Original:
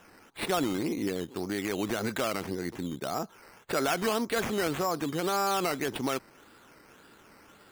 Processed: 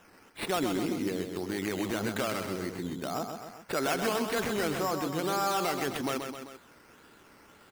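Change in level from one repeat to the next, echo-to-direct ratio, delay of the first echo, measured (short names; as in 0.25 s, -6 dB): -4.5 dB, -5.0 dB, 0.13 s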